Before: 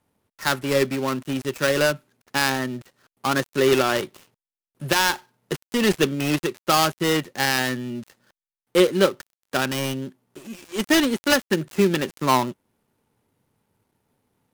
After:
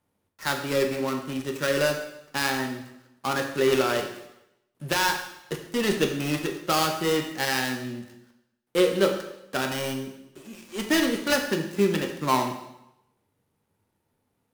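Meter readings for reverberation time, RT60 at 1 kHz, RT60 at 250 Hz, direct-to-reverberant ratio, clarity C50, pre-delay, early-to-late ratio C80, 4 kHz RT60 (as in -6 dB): 0.85 s, 0.90 s, 0.85 s, 3.0 dB, 7.0 dB, 5 ms, 9.5 dB, 0.80 s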